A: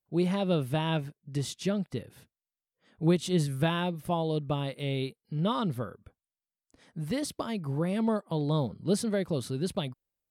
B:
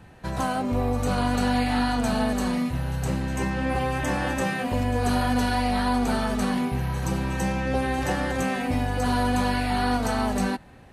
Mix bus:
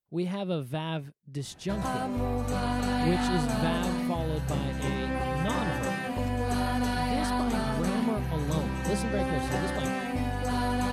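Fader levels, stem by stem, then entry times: −3.5, −5.0 decibels; 0.00, 1.45 seconds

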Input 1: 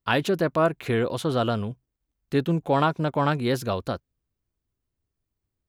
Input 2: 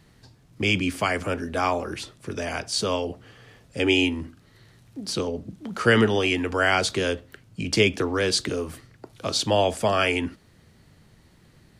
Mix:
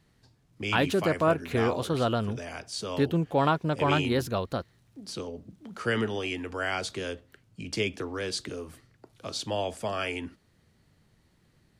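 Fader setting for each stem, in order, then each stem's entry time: −2.5, −9.5 decibels; 0.65, 0.00 seconds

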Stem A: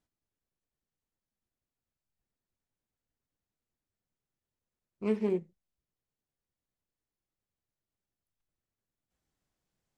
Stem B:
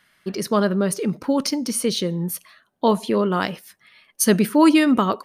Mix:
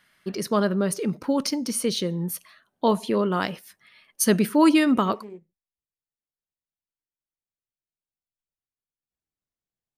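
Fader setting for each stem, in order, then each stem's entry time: −11.5, −3.0 decibels; 0.00, 0.00 seconds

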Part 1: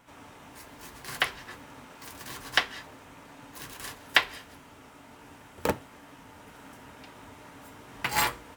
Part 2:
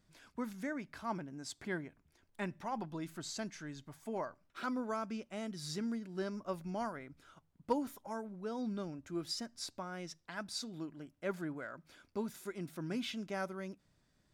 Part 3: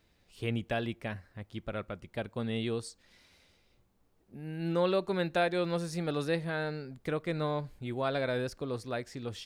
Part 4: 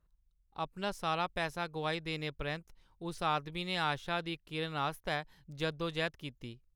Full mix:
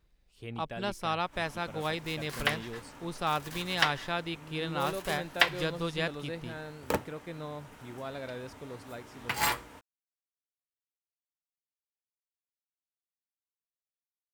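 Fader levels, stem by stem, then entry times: −2.5 dB, muted, −8.5 dB, +2.0 dB; 1.25 s, muted, 0.00 s, 0.00 s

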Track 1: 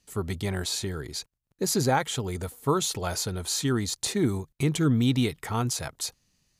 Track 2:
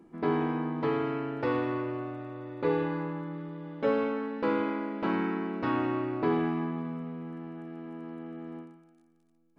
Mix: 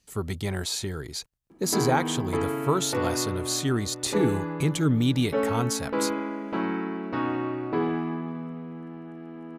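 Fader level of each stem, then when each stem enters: 0.0, +1.0 decibels; 0.00, 1.50 seconds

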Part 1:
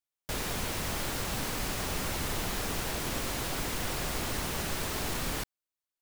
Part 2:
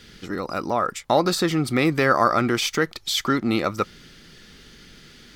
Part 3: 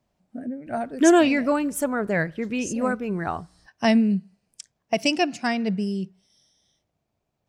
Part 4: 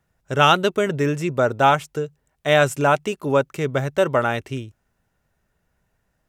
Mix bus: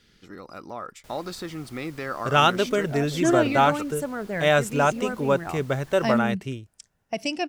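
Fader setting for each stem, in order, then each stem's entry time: −18.5, −13.0, −6.0, −3.5 decibels; 0.75, 0.00, 2.20, 1.95 seconds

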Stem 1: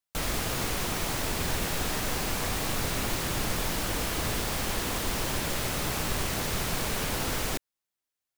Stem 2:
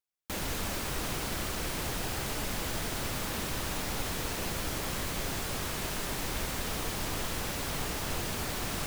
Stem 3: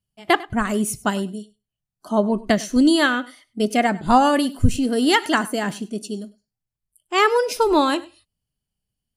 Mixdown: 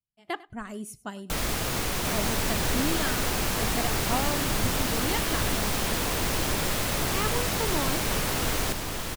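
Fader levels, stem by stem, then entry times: +1.5, +1.5, −15.5 decibels; 1.15, 1.75, 0.00 seconds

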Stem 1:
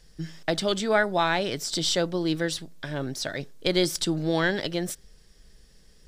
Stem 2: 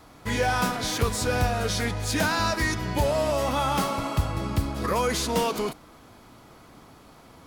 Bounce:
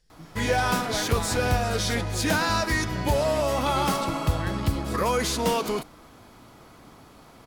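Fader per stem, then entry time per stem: −12.0, +0.5 decibels; 0.00, 0.10 seconds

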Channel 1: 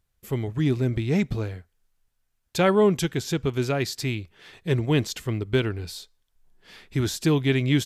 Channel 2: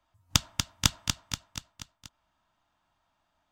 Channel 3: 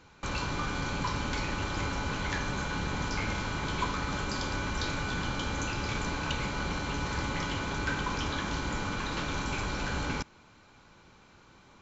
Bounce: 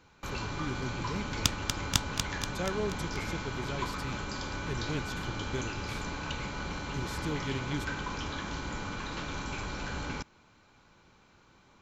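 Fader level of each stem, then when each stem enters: −14.5, −3.5, −4.0 decibels; 0.00, 1.10, 0.00 seconds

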